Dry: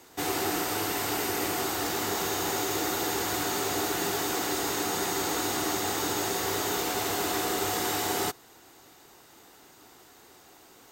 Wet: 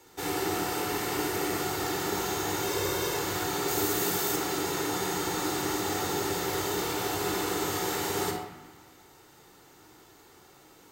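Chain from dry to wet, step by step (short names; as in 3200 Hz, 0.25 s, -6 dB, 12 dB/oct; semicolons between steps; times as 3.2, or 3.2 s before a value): 2.63–3.17 comb 1.9 ms; 3.68–4.36 high shelf 7800 Hz +10 dB; band-limited delay 0.182 s, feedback 50%, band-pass 1400 Hz, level -14 dB; shoebox room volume 2900 m³, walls furnished, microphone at 4.3 m; gain -5.5 dB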